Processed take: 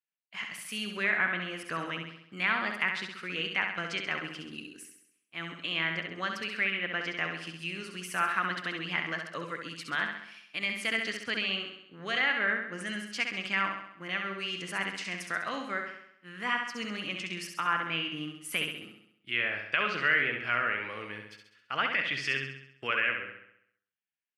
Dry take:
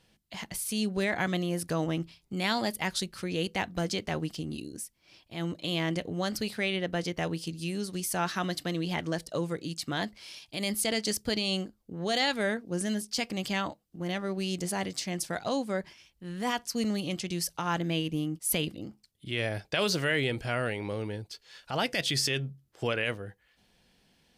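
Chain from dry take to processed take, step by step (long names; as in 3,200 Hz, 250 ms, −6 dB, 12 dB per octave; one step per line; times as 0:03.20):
downward expander −39 dBFS
high-pass filter 170 Hz 12 dB per octave
flat-topped bell 1,800 Hz +15 dB
treble cut that deepens with the level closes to 2,200 Hz, closed at −15.5 dBFS
flutter between parallel walls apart 11.4 metres, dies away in 0.72 s
level −9 dB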